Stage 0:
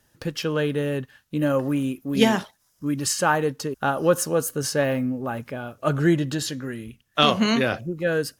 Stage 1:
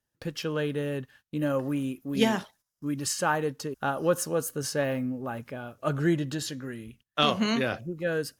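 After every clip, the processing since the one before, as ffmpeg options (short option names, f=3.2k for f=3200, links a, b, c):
-af "agate=range=-15dB:threshold=-50dB:ratio=16:detection=peak,volume=-5.5dB"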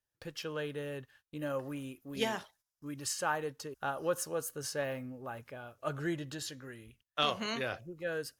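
-af "equalizer=f=210:w=1.1:g=-9,volume=-6dB"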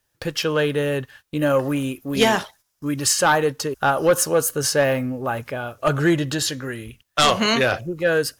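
-af "aeval=exprs='0.168*sin(PI/2*2.51*val(0)/0.168)':c=same,volume=6dB"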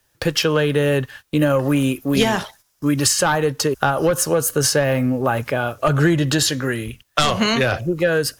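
-filter_complex "[0:a]acrossover=split=160[a][b];[b]acompressor=threshold=-22dB:ratio=10[c];[a][c]amix=inputs=2:normalize=0,volume=7.5dB"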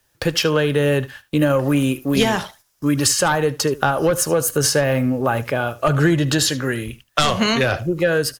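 -af "aecho=1:1:76:0.112"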